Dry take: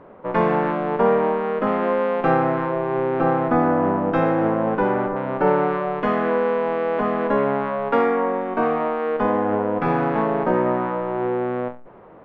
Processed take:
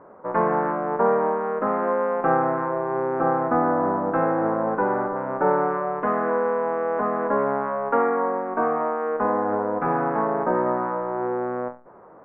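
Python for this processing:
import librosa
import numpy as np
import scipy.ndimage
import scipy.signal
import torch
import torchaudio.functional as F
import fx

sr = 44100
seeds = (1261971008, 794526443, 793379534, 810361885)

y = scipy.signal.sosfilt(scipy.signal.butter(4, 1500.0, 'lowpass', fs=sr, output='sos'), x)
y = fx.tilt_eq(y, sr, slope=2.5)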